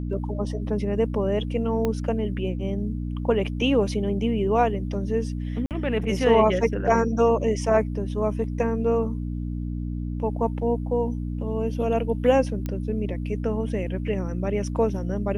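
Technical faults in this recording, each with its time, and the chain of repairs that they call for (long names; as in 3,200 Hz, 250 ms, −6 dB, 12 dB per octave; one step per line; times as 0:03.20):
mains hum 60 Hz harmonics 5 −29 dBFS
0:01.85: click −13 dBFS
0:05.66–0:05.71: drop-out 48 ms
0:12.66: click −17 dBFS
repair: click removal
hum removal 60 Hz, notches 5
repair the gap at 0:05.66, 48 ms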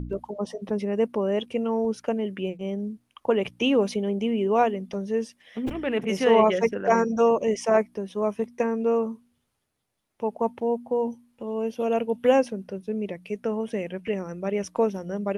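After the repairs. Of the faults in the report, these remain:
0:01.85: click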